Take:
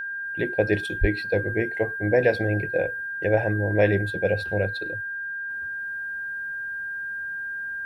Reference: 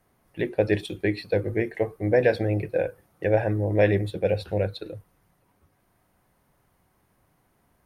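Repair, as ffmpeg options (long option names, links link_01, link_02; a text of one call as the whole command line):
ffmpeg -i in.wav -filter_complex "[0:a]bandreject=frequency=1600:width=30,asplit=3[link_01][link_02][link_03];[link_01]afade=type=out:start_time=1:duration=0.02[link_04];[link_02]highpass=frequency=140:width=0.5412,highpass=frequency=140:width=1.3066,afade=type=in:start_time=1:duration=0.02,afade=type=out:start_time=1.12:duration=0.02[link_05];[link_03]afade=type=in:start_time=1.12:duration=0.02[link_06];[link_04][link_05][link_06]amix=inputs=3:normalize=0,asetnsamples=nb_out_samples=441:pad=0,asendcmd='5.5 volume volume -6.5dB',volume=0dB" out.wav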